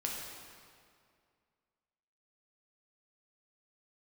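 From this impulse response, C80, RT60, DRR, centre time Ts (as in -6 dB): 2.0 dB, 2.2 s, -2.5 dB, 97 ms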